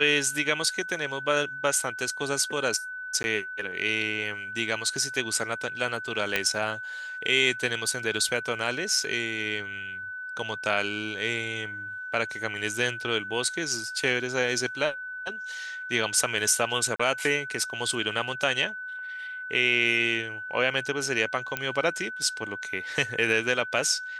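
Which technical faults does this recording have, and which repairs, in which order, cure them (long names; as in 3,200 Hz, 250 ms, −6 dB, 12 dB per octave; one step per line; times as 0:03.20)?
whistle 1,500 Hz −34 dBFS
0:03.23–0:03.24: drop-out 11 ms
0:06.36: click −9 dBFS
0:16.96–0:17.00: drop-out 35 ms
0:21.57: click −12 dBFS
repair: click removal
notch filter 1,500 Hz, Q 30
repair the gap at 0:03.23, 11 ms
repair the gap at 0:16.96, 35 ms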